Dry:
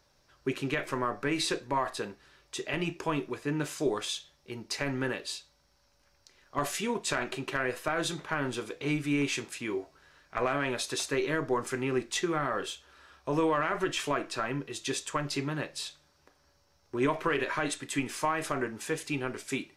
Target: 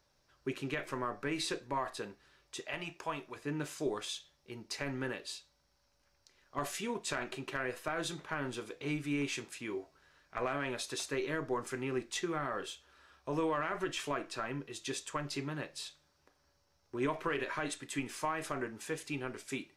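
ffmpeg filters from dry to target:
ffmpeg -i in.wav -filter_complex "[0:a]asettb=1/sr,asplit=3[link_01][link_02][link_03];[link_01]atrim=end=2.604[link_04];[link_02]atrim=start=2.6:end=3.36,asetpts=PTS-STARTPTS,afade=type=in:duration=0.004:curve=qsin,afade=type=out:start_time=0.756:duration=0.004:curve=qsin,lowshelf=frequency=500:width_type=q:width=1.5:gain=-6.5[link_05];[link_03]atrim=start=3.356[link_06];[link_04][link_05]acrossfade=duration=0.004:curve1=hsin:curve2=qsin[link_07];[link_07][link_06]acrossfade=duration=0.004:curve1=qsin:curve2=hsin,volume=-6dB" out.wav

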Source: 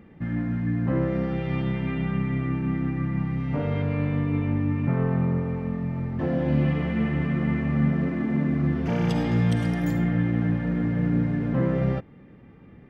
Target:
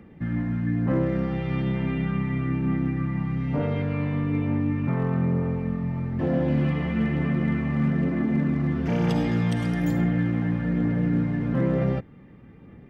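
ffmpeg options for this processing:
ffmpeg -i in.wav -filter_complex "[0:a]acrossover=split=150|1900[link_01][link_02][link_03];[link_01]alimiter=level_in=5dB:limit=-24dB:level=0:latency=1,volume=-5dB[link_04];[link_04][link_02][link_03]amix=inputs=3:normalize=0,volume=17dB,asoftclip=hard,volume=-17dB,aphaser=in_gain=1:out_gain=1:delay=1.1:decay=0.21:speed=1.1:type=triangular" out.wav

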